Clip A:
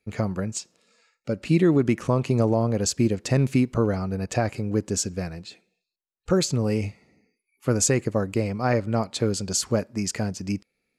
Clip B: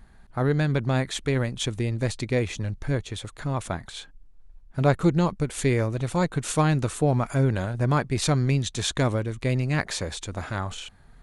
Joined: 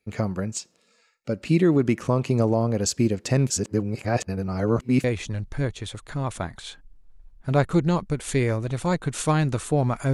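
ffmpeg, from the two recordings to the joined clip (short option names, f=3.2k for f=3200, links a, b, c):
-filter_complex "[0:a]apad=whole_dur=10.13,atrim=end=10.13,asplit=2[a][b];[a]atrim=end=3.502[c];[b]atrim=start=3.498:end=5.042,asetpts=PTS-STARTPTS,areverse[d];[1:a]atrim=start=2.338:end=7.43[e];[c][d]acrossfade=d=0.004:c1=hsin:c2=hsin[f];[f][e]acrossfade=d=0.004:c1=hsin:c2=hsin"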